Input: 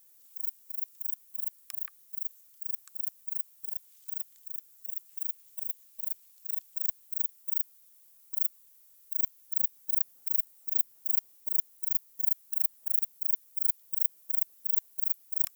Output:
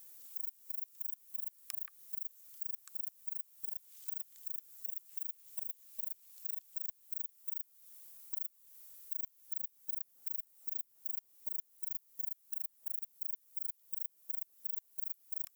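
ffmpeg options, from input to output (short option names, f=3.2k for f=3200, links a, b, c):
-af "acompressor=threshold=-42dB:ratio=6,volume=4.5dB"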